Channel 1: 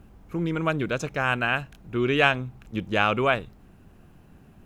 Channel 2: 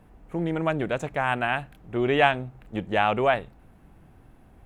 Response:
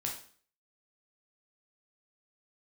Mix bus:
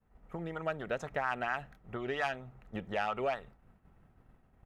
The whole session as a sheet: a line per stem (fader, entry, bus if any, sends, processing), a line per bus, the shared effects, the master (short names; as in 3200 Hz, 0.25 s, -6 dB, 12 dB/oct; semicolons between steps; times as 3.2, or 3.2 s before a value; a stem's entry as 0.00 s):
-16.0 dB, 0.00 s, no send, soft clip -13.5 dBFS, distortion -15 dB
-4.0 dB, 0.8 ms, polarity flipped, no send, high shelf 4700 Hz -11.5 dB; compressor, threshold -28 dBFS, peak gain reduction 13 dB; vibrato 4.3 Hz 13 cents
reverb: off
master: expander -49 dBFS; bell 310 Hz -7.5 dB 0.26 oct; small resonant body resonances 1300/1900 Hz, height 7 dB, ringing for 25 ms